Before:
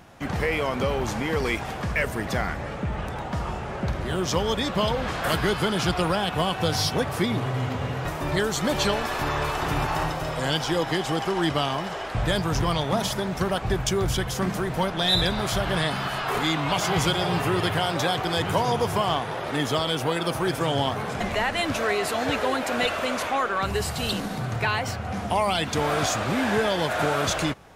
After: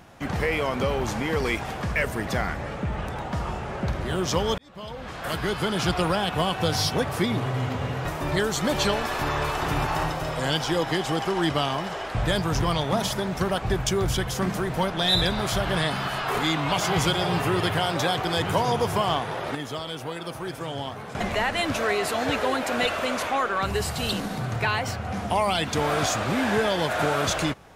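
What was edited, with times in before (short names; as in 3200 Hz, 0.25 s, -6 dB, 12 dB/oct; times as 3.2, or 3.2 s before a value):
4.58–5.9 fade in
19.55–21.15 gain -8 dB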